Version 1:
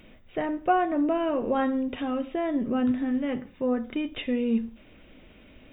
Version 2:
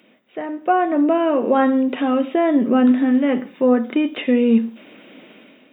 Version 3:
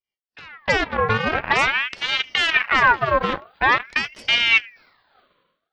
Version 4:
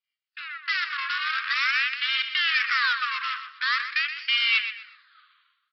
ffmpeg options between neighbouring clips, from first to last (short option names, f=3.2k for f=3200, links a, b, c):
-filter_complex "[0:a]acrossover=split=2700[a][b];[b]acompressor=threshold=-53dB:ratio=4:attack=1:release=60[c];[a][c]amix=inputs=2:normalize=0,highpass=f=200:w=0.5412,highpass=f=200:w=1.3066,dynaudnorm=f=480:g=3:m=11.5dB"
-af "aeval=exprs='0.562*(cos(1*acos(clip(val(0)/0.562,-1,1)))-cos(1*PI/2))+0.112*(cos(7*acos(clip(val(0)/0.562,-1,1)))-cos(7*PI/2))+0.02*(cos(8*acos(clip(val(0)/0.562,-1,1)))-cos(8*PI/2))':c=same,agate=range=-33dB:threshold=-46dB:ratio=3:detection=peak,aeval=exprs='val(0)*sin(2*PI*1700*n/s+1700*0.55/0.46*sin(2*PI*0.46*n/s))':c=same"
-af "aresample=11025,asoftclip=type=tanh:threshold=-22.5dB,aresample=44100,asuperpass=centerf=2600:order=20:qfactor=0.58,aecho=1:1:123|246|369:0.299|0.0806|0.0218,volume=4.5dB"